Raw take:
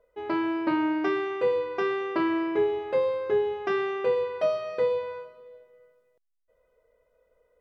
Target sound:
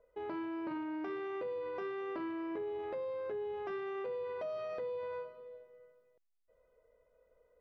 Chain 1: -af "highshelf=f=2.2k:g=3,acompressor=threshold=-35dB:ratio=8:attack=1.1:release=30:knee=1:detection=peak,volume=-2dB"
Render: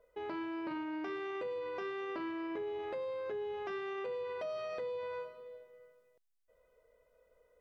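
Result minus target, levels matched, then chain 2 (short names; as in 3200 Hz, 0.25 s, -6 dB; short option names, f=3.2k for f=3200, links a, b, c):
4000 Hz band +6.0 dB
-af "highshelf=f=2.2k:g=-7,acompressor=threshold=-35dB:ratio=8:attack=1.1:release=30:knee=1:detection=peak,volume=-2dB"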